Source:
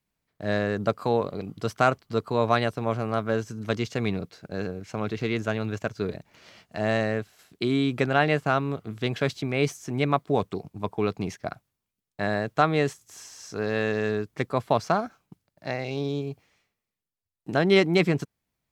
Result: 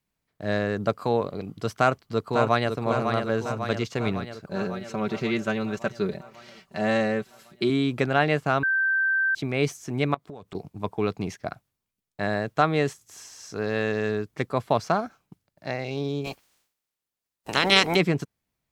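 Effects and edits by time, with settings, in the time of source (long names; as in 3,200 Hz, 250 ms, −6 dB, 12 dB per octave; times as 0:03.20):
0:01.76–0:02.71: delay throw 550 ms, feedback 65%, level −6 dB
0:04.47–0:07.70: comb filter 5.2 ms
0:08.63–0:09.35: beep over 1,560 Hz −20 dBFS
0:10.14–0:10.55: downward compressor 12 to 1, threshold −36 dBFS
0:16.24–0:17.95: ceiling on every frequency bin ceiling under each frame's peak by 26 dB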